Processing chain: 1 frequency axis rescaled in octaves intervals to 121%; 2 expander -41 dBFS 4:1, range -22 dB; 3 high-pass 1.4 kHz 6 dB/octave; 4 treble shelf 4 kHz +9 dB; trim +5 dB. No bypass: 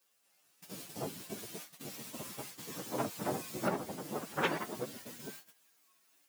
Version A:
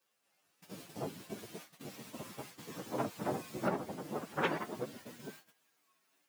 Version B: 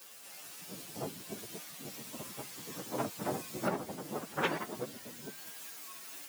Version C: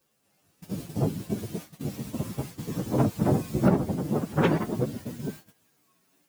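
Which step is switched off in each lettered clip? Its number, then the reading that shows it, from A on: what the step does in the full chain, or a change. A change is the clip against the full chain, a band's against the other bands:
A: 4, 8 kHz band -7.0 dB; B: 2, momentary loudness spread change -2 LU; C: 3, 125 Hz band +16.0 dB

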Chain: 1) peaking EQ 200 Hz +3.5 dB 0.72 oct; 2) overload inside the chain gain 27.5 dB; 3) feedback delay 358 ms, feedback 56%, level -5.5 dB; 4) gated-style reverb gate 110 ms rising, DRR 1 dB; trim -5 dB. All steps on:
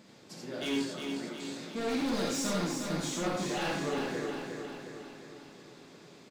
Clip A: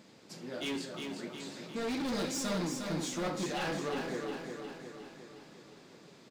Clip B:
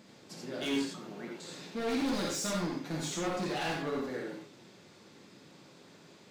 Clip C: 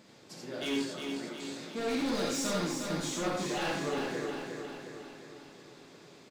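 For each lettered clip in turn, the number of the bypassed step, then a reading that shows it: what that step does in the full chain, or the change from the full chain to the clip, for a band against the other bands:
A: 4, echo-to-direct 2.0 dB to -4.0 dB; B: 3, echo-to-direct 2.0 dB to -1.0 dB; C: 1, 125 Hz band -2.0 dB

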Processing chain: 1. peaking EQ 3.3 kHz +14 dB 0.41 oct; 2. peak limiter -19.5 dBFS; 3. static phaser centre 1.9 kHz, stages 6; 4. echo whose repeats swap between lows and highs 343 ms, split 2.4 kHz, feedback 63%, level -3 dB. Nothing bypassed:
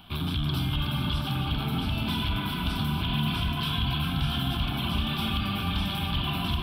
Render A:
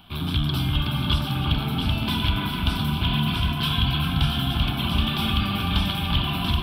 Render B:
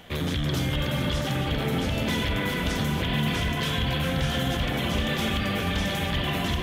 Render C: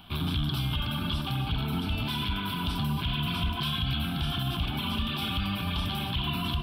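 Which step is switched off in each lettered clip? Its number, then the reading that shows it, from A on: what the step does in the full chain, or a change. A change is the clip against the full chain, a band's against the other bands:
2, mean gain reduction 4.0 dB; 3, 500 Hz band +9.5 dB; 4, crest factor change -2.0 dB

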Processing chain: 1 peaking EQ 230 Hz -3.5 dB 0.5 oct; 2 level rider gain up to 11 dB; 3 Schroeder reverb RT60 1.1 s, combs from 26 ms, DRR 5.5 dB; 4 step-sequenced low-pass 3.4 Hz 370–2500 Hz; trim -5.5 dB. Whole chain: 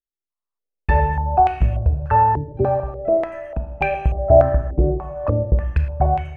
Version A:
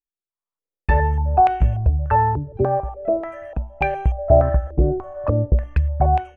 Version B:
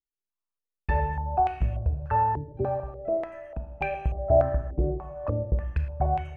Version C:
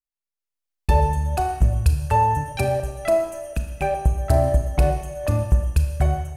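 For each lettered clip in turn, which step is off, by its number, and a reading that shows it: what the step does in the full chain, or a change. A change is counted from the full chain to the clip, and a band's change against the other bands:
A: 3, 500 Hz band -2.0 dB; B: 2, loudness change -8.5 LU; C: 4, 125 Hz band +4.5 dB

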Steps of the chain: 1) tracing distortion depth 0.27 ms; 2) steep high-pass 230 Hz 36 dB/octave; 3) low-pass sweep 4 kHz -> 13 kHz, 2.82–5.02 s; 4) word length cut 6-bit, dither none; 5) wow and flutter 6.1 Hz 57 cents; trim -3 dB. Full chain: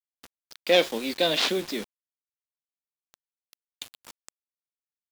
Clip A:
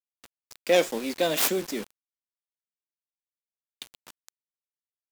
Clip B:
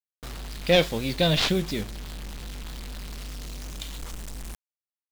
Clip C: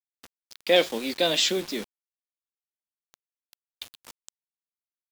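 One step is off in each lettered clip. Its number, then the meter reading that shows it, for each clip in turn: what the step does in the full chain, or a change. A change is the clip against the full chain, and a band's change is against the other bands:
3, 8 kHz band +6.5 dB; 2, 125 Hz band +16.5 dB; 1, 8 kHz band +5.5 dB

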